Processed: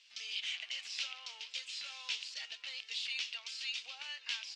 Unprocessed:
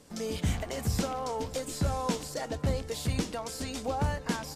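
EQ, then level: resonant high-pass 2.7 kHz, resonance Q 3.7; low-pass 5 kHz 24 dB/octave; treble shelf 3.8 kHz +9 dB; -6.0 dB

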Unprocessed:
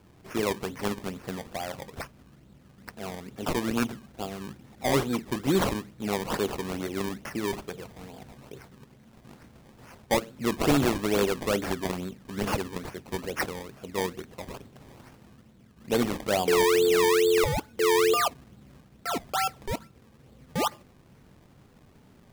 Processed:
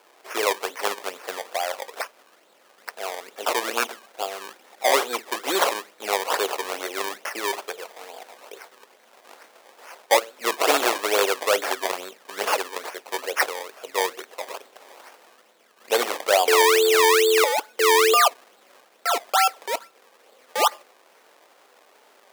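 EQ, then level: high-pass 490 Hz 24 dB/octave; +8.5 dB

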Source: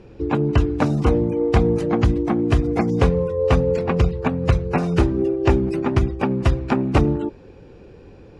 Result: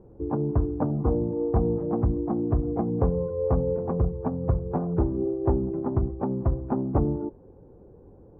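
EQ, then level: low-pass 1 kHz 24 dB/octave; -6.5 dB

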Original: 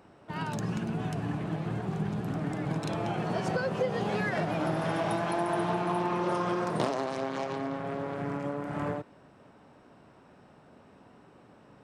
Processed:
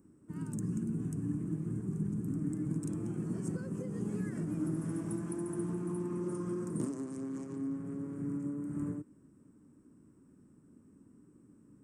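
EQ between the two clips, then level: FFT filter 140 Hz 0 dB, 300 Hz +5 dB, 720 Hz -26 dB, 1.1 kHz -14 dB, 1.9 kHz -17 dB, 3.9 kHz -26 dB, 8.3 kHz +8 dB, 12 kHz +1 dB; -4.0 dB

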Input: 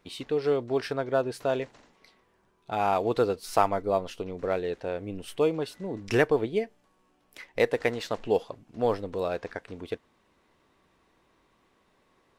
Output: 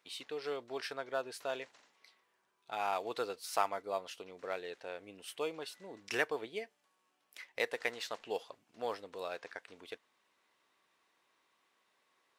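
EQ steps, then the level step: high-pass 1.5 kHz 6 dB/octave; -3.0 dB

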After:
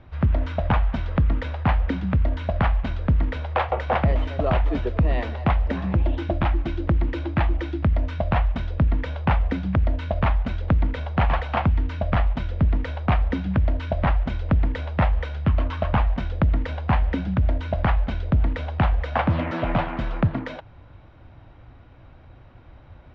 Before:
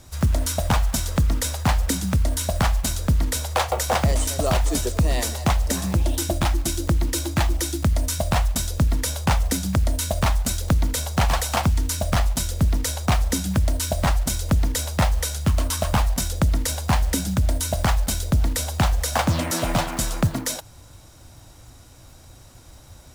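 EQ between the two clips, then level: low-pass 2.8 kHz 24 dB/octave; distance through air 86 m; 0.0 dB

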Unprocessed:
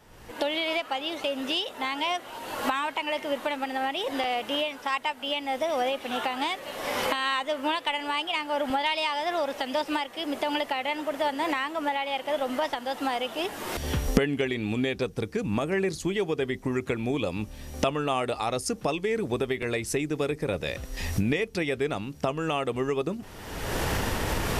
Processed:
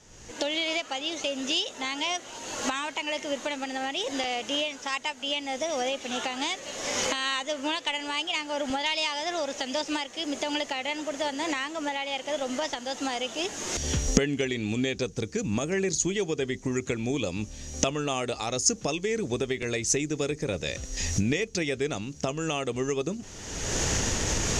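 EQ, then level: resonant low-pass 6.6 kHz, resonance Q 7.5; peaking EQ 1 kHz -5.5 dB 1.4 oct; 0.0 dB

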